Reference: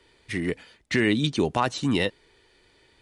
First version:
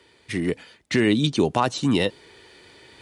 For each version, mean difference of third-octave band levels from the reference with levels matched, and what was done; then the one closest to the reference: 1.0 dB: HPF 86 Hz; dynamic EQ 1900 Hz, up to -5 dB, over -39 dBFS, Q 1.4; reverse; upward compressor, threshold -44 dBFS; reverse; gain +3.5 dB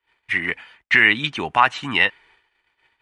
7.0 dB: band shelf 1500 Hz +14 dB 2.4 oct; gate -48 dBFS, range -24 dB; dynamic EQ 2100 Hz, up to +6 dB, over -25 dBFS, Q 0.81; gain -6 dB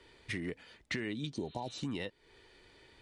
4.0 dB: spectral repair 1.36–1.75, 980–4200 Hz both; high shelf 8300 Hz -8 dB; compressor 6:1, threshold -36 dBFS, peak gain reduction 17 dB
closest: first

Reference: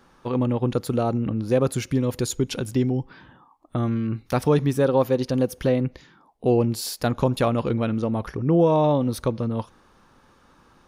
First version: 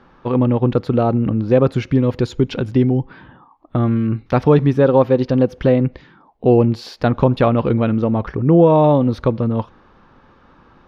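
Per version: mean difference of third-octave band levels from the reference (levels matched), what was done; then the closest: 3.0 dB: air absorption 260 m; gain +7.5 dB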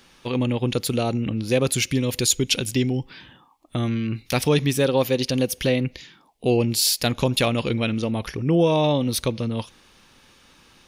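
4.0 dB: resonant high shelf 1800 Hz +10 dB, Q 1.5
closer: first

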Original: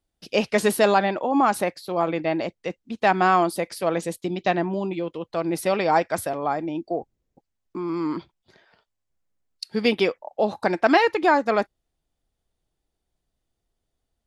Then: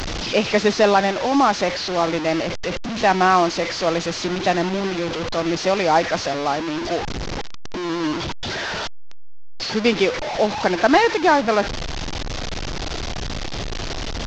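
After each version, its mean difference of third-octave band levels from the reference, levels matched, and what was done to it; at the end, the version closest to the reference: 8.5 dB: delta modulation 32 kbps, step -23 dBFS; gain +3 dB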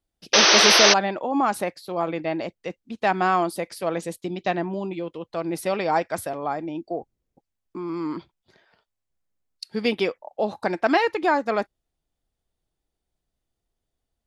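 2.5 dB: painted sound noise, 0.33–0.94, 300–6300 Hz -13 dBFS; gain -2.5 dB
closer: second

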